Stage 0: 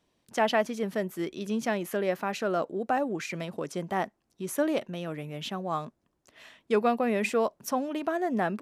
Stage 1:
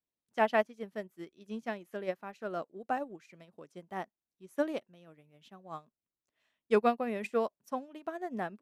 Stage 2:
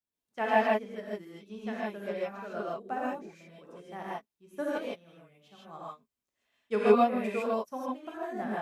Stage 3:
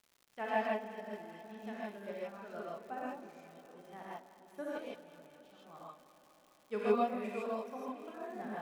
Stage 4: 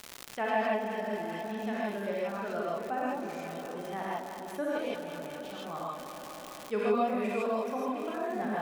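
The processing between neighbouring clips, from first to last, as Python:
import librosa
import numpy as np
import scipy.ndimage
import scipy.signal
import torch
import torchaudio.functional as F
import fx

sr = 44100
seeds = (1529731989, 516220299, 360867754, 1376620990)

y1 = fx.upward_expand(x, sr, threshold_db=-38.0, expansion=2.5)
y2 = fx.rev_gated(y1, sr, seeds[0], gate_ms=180, shape='rising', drr_db=-7.5)
y2 = y2 * 10.0 ** (-5.5 / 20.0)
y3 = fx.dmg_crackle(y2, sr, seeds[1], per_s=180.0, level_db=-43.0)
y3 = fx.echo_alternate(y3, sr, ms=103, hz=860.0, feedback_pct=88, wet_db=-14.0)
y3 = y3 * 10.0 ** (-8.5 / 20.0)
y4 = fx.env_flatten(y3, sr, amount_pct=50)
y4 = y4 * 10.0 ** (1.0 / 20.0)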